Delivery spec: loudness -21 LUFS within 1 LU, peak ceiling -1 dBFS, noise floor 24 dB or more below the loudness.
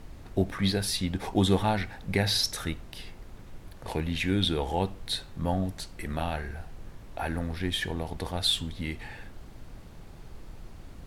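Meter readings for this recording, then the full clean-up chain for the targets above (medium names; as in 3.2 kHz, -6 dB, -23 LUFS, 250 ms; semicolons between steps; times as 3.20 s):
noise floor -47 dBFS; noise floor target -54 dBFS; loudness -29.5 LUFS; peak level -11.0 dBFS; loudness target -21.0 LUFS
-> noise print and reduce 7 dB; trim +8.5 dB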